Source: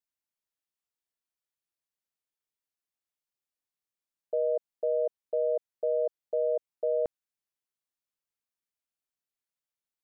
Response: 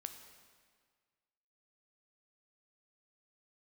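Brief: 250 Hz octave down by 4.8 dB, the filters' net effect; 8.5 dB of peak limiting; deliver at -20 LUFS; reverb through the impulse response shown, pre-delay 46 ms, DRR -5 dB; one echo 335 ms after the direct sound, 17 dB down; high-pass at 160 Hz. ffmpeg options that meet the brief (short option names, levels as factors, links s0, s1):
-filter_complex "[0:a]highpass=160,equalizer=f=250:t=o:g=-8,alimiter=level_in=2.11:limit=0.0631:level=0:latency=1,volume=0.473,aecho=1:1:335:0.141,asplit=2[s0][s1];[1:a]atrim=start_sample=2205,adelay=46[s2];[s1][s2]afir=irnorm=-1:irlink=0,volume=2.66[s3];[s0][s3]amix=inputs=2:normalize=0,volume=4.47"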